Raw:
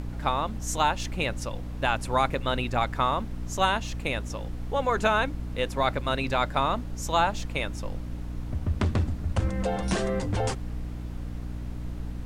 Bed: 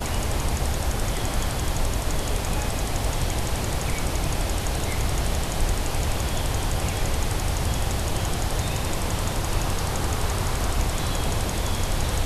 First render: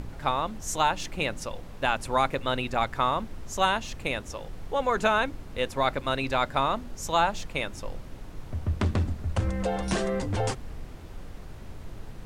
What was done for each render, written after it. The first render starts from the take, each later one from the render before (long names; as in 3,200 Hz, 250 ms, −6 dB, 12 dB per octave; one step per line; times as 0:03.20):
hum removal 60 Hz, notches 5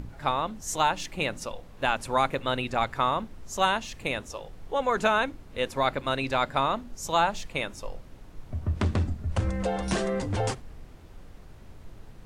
noise reduction from a noise print 6 dB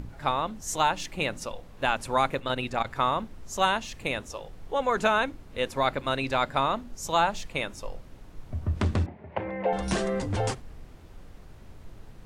0:02.32–0:02.96: saturating transformer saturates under 280 Hz
0:09.06–0:09.73: loudspeaker in its box 230–2,600 Hz, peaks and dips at 260 Hz −6 dB, 390 Hz +5 dB, 610 Hz +5 dB, 880 Hz +8 dB, 1,300 Hz −7 dB, 2,100 Hz +6 dB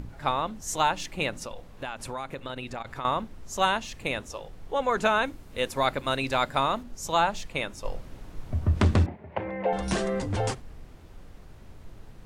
0:01.30–0:03.05: downward compressor 4 to 1, threshold −32 dBFS
0:05.24–0:06.83: high-shelf EQ 6,300 Hz +8 dB
0:07.85–0:09.16: clip gain +4.5 dB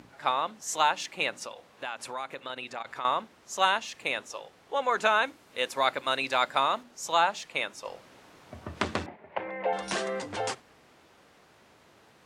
meter weighting curve A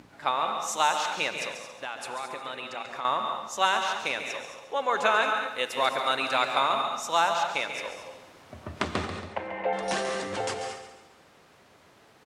repeating echo 139 ms, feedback 43%, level −10 dB
reverb whose tail is shaped and stops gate 250 ms rising, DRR 5 dB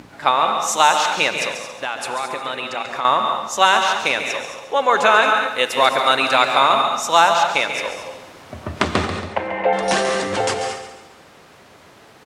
level +10.5 dB
brickwall limiter −1 dBFS, peak gain reduction 2.5 dB